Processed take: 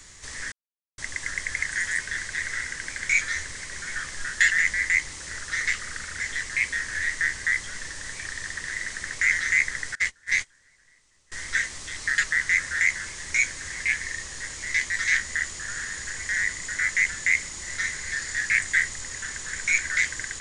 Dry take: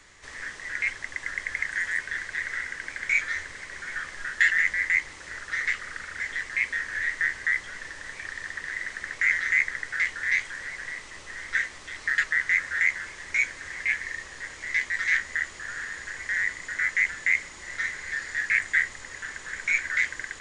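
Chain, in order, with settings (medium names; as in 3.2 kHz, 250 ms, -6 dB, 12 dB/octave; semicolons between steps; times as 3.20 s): tone controls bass +8 dB, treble +13 dB; 0.52–0.98 s: mute; 9.95–11.32 s: gate -24 dBFS, range -26 dB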